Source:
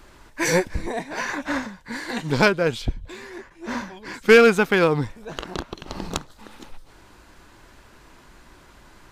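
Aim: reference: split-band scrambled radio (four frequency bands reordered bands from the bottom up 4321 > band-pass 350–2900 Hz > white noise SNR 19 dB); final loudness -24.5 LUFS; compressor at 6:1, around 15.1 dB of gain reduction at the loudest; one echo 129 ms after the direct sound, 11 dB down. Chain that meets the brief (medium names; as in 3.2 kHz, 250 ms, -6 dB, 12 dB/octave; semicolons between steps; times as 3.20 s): compression 6:1, threshold -25 dBFS; delay 129 ms -11 dB; four frequency bands reordered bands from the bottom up 4321; band-pass 350–2900 Hz; white noise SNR 19 dB; trim +11.5 dB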